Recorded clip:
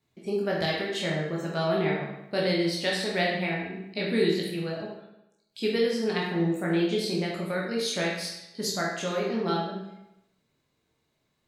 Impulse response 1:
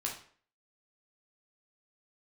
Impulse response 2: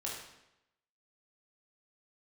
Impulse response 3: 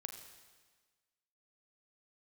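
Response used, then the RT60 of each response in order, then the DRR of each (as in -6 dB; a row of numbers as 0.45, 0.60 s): 2; 0.50, 0.85, 1.4 s; -2.0, -4.0, 5.0 dB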